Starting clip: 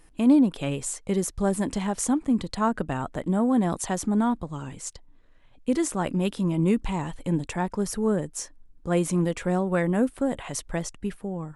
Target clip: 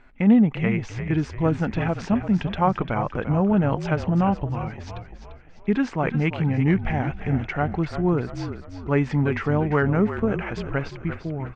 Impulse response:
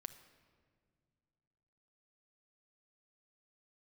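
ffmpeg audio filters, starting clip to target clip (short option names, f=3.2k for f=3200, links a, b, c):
-filter_complex "[0:a]crystalizer=i=6:c=0,asetrate=36028,aresample=44100,atempo=1.22405,lowpass=f=2.3k:w=0.5412,lowpass=f=2.3k:w=1.3066,asplit=2[a][b];[b]asplit=5[c][d][e][f][g];[c]adelay=345,afreqshift=-41,volume=-10dB[h];[d]adelay=690,afreqshift=-82,volume=-16.7dB[i];[e]adelay=1035,afreqshift=-123,volume=-23.5dB[j];[f]adelay=1380,afreqshift=-164,volume=-30.2dB[k];[g]adelay=1725,afreqshift=-205,volume=-37dB[l];[h][i][j][k][l]amix=inputs=5:normalize=0[m];[a][m]amix=inputs=2:normalize=0,volume=2dB"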